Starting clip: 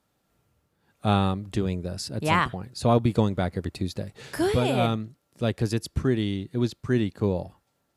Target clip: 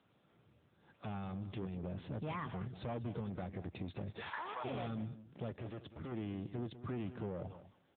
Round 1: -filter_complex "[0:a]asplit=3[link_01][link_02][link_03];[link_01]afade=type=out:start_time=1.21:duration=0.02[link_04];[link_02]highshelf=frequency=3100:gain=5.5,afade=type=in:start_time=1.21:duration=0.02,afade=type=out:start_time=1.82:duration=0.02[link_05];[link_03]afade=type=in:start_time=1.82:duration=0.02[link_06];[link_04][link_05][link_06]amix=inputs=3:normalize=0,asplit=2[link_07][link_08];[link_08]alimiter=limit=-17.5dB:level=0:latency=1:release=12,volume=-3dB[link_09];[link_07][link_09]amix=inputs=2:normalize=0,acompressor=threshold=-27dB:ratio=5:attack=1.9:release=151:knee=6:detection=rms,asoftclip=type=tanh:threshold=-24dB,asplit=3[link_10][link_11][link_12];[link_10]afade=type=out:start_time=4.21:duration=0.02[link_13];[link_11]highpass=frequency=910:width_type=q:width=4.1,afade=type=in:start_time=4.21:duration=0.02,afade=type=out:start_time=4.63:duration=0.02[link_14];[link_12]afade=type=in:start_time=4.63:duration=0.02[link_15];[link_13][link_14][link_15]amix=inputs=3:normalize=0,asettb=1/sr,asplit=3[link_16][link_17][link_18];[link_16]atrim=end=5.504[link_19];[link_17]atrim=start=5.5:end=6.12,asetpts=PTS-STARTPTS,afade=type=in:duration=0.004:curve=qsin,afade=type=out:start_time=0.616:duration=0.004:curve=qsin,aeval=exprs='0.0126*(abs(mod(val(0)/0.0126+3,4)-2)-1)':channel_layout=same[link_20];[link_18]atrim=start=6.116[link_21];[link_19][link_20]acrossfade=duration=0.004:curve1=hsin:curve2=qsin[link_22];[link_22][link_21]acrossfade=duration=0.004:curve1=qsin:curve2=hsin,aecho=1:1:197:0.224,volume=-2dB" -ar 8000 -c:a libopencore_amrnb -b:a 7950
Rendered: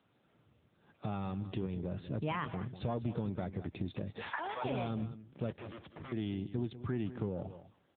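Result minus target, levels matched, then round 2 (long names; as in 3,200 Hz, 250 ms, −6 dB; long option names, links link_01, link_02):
soft clipping: distortion −11 dB
-filter_complex "[0:a]asplit=3[link_01][link_02][link_03];[link_01]afade=type=out:start_time=1.21:duration=0.02[link_04];[link_02]highshelf=frequency=3100:gain=5.5,afade=type=in:start_time=1.21:duration=0.02,afade=type=out:start_time=1.82:duration=0.02[link_05];[link_03]afade=type=in:start_time=1.82:duration=0.02[link_06];[link_04][link_05][link_06]amix=inputs=3:normalize=0,asplit=2[link_07][link_08];[link_08]alimiter=limit=-17.5dB:level=0:latency=1:release=12,volume=-3dB[link_09];[link_07][link_09]amix=inputs=2:normalize=0,acompressor=threshold=-27dB:ratio=5:attack=1.9:release=151:knee=6:detection=rms,asoftclip=type=tanh:threshold=-34.5dB,asplit=3[link_10][link_11][link_12];[link_10]afade=type=out:start_time=4.21:duration=0.02[link_13];[link_11]highpass=frequency=910:width_type=q:width=4.1,afade=type=in:start_time=4.21:duration=0.02,afade=type=out:start_time=4.63:duration=0.02[link_14];[link_12]afade=type=in:start_time=4.63:duration=0.02[link_15];[link_13][link_14][link_15]amix=inputs=3:normalize=0,asettb=1/sr,asplit=3[link_16][link_17][link_18];[link_16]atrim=end=5.504[link_19];[link_17]atrim=start=5.5:end=6.12,asetpts=PTS-STARTPTS,afade=type=in:duration=0.004:curve=qsin,afade=type=out:start_time=0.616:duration=0.004:curve=qsin,aeval=exprs='0.0126*(abs(mod(val(0)/0.0126+3,4)-2)-1)':channel_layout=same[link_20];[link_18]atrim=start=6.116[link_21];[link_19][link_20]acrossfade=duration=0.004:curve1=hsin:curve2=qsin[link_22];[link_22][link_21]acrossfade=duration=0.004:curve1=qsin:curve2=hsin,aecho=1:1:197:0.224,volume=-2dB" -ar 8000 -c:a libopencore_amrnb -b:a 7950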